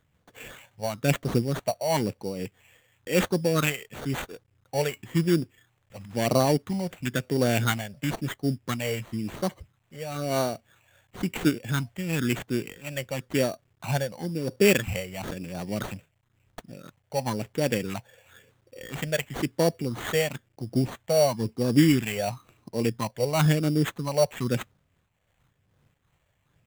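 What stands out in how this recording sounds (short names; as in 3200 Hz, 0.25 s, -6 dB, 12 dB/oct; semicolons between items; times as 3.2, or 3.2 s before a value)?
a quantiser's noise floor 12-bit, dither none; phasing stages 6, 0.98 Hz, lowest notch 290–2000 Hz; aliases and images of a low sample rate 5100 Hz, jitter 0%; noise-modulated level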